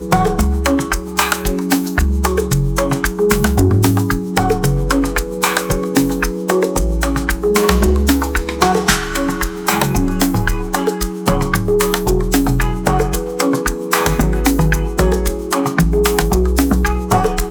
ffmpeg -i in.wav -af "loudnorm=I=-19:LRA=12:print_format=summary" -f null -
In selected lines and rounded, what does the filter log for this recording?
Input Integrated:    -16.0 LUFS
Input True Peak:      -1.0 dBTP
Input LRA:             1.0 LU
Input Threshold:     -26.0 LUFS